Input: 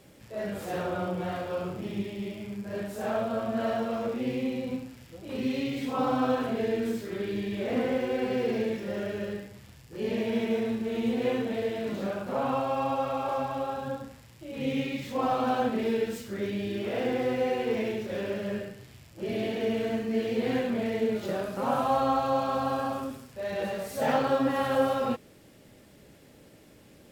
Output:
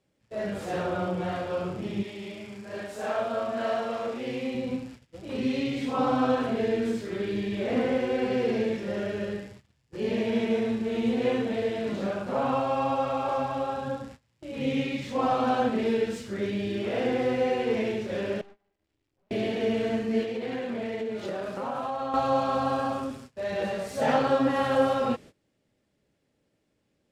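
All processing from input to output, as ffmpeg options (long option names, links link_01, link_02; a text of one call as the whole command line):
ffmpeg -i in.wav -filter_complex "[0:a]asettb=1/sr,asplit=3[link_01][link_02][link_03];[link_01]atrim=end=2.034[link_04];[link_02]atrim=start=2.03:end=4.55,asetpts=PTS-STARTPTS,afade=type=in:duration=0.004:curve=qsin,afade=type=out:start_time=2.516:duration=0.004:curve=qsin,lowshelf=frequency=310:gain=-11,asplit=2[link_05][link_06];[link_06]adelay=38,volume=-6dB[link_07];[link_05][link_07]amix=inputs=2:normalize=0,atrim=end_sample=111132[link_08];[link_03]atrim=start=4.546[link_09];[link_04][link_08]acrossfade=duration=0.004:curve1=hsin:curve2=qsin[link_10];[link_10][link_09]acrossfade=duration=0.004:curve1=qsin:curve2=hsin,asettb=1/sr,asplit=3[link_11][link_12][link_13];[link_11]atrim=end=18.414[link_14];[link_12]atrim=start=18.41:end=19.31,asetpts=PTS-STARTPTS,afade=type=in:duration=0.004:curve=qsin,afade=type=out:start_time=0.896:duration=0.004:curve=qsin,aeval=exprs='val(0)*sin(2*PI*200*n/s)':channel_layout=same,acompressor=threshold=-50dB:ratio=2.5:attack=3.2:release=140:knee=1:detection=peak,aeval=exprs='(tanh(398*val(0)+0.8)-tanh(0.8))/398':channel_layout=same[link_15];[link_13]atrim=start=19.306[link_16];[link_14][link_15]acrossfade=duration=0.004:curve1=hsin:curve2=qsin[link_17];[link_17][link_16]acrossfade=duration=0.004:curve1=qsin:curve2=hsin,asettb=1/sr,asplit=3[link_18][link_19][link_20];[link_18]atrim=end=20.234[link_21];[link_19]atrim=start=20.23:end=22.14,asetpts=PTS-STARTPTS,afade=type=in:duration=0.004:curve=qsin,afade=type=out:start_time=1.906:duration=0.004:curve=qsin,bass=frequency=250:gain=-5,treble=frequency=4000:gain=-3,acompressor=threshold=-30dB:ratio=6:attack=3.2:release=140:knee=1:detection=peak[link_22];[link_20]atrim=start=22.136[link_23];[link_21][link_22]acrossfade=duration=0.004:curve1=hsin:curve2=qsin[link_24];[link_24][link_23]acrossfade=duration=0.004:curve1=qsin:curve2=hsin,agate=range=-21dB:threshold=-46dB:ratio=16:detection=peak,lowpass=8400,volume=2dB" out.wav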